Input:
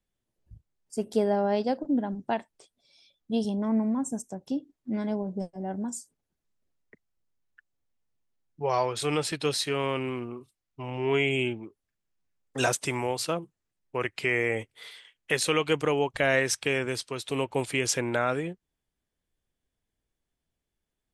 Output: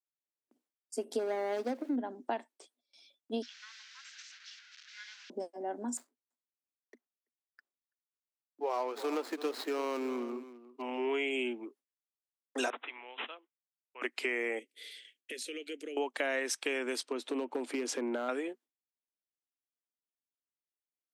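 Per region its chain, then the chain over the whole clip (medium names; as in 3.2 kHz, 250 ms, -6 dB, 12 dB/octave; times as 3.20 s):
1.19–1.96 s: median filter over 41 samples + small samples zeroed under -52.5 dBFS
3.42–5.30 s: one-bit delta coder 32 kbps, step -40 dBFS + elliptic high-pass 1.5 kHz, stop band 60 dB
5.97–10.82 s: median filter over 15 samples + delay 334 ms -16.5 dB
12.70–14.02 s: low-pass 6.2 kHz + differentiator + careless resampling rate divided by 6×, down none, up filtered
14.59–15.97 s: Butterworth band-stop 1 kHz, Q 0.63 + compression 2.5:1, threshold -43 dBFS
17.03–18.29 s: tilt EQ -3 dB/octave + compression 3:1, threshold -25 dBFS + hard clipper -21 dBFS
whole clip: gate with hold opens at -51 dBFS; Chebyshev high-pass 240 Hz, order 6; compression 3:1, threshold -32 dBFS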